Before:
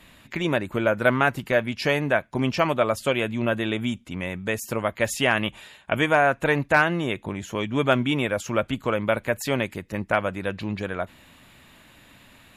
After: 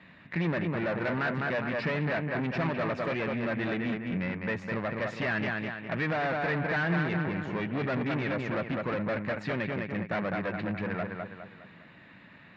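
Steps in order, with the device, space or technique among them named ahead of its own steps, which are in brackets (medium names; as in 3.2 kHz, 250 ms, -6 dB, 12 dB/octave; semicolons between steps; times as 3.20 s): analogue delay pedal into a guitar amplifier (bucket-brigade echo 205 ms, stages 4096, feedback 39%, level -6.5 dB; valve stage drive 28 dB, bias 0.6; cabinet simulation 95–3700 Hz, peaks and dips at 170 Hz +9 dB, 1.8 kHz +6 dB, 3.2 kHz -8 dB)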